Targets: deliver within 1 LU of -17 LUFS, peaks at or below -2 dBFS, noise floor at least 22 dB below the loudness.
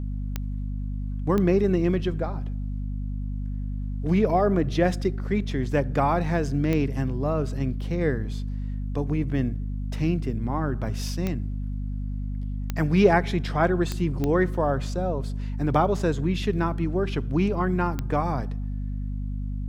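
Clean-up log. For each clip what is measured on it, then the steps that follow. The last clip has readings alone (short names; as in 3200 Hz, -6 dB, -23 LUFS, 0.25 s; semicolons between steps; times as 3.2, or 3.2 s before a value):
clicks 8; hum 50 Hz; harmonics up to 250 Hz; hum level -27 dBFS; loudness -26.0 LUFS; peak -5.5 dBFS; loudness target -17.0 LUFS
-> de-click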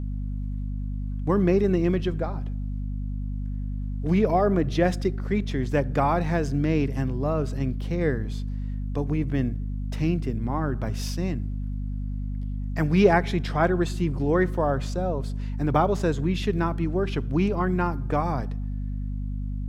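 clicks 0; hum 50 Hz; harmonics up to 250 Hz; hum level -27 dBFS
-> de-hum 50 Hz, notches 5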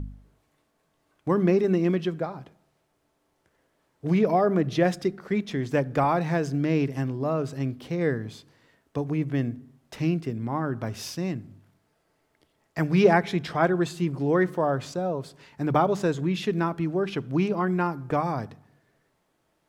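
hum none; loudness -26.0 LUFS; peak -6.0 dBFS; loudness target -17.0 LUFS
-> gain +9 dB; limiter -2 dBFS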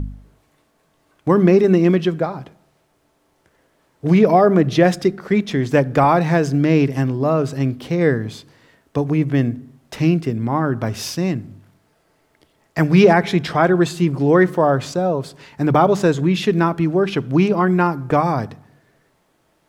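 loudness -17.5 LUFS; peak -2.0 dBFS; noise floor -63 dBFS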